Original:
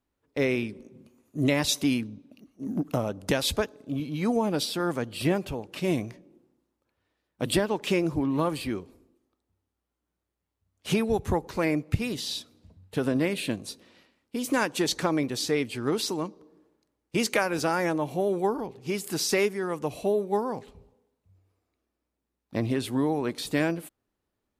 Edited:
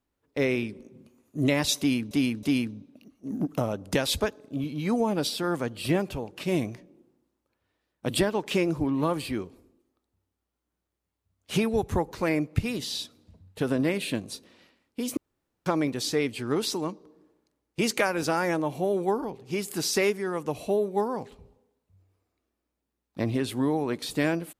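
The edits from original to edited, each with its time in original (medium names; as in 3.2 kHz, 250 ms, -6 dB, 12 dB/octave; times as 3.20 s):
1.79–2.11 s: loop, 3 plays
14.53–15.02 s: room tone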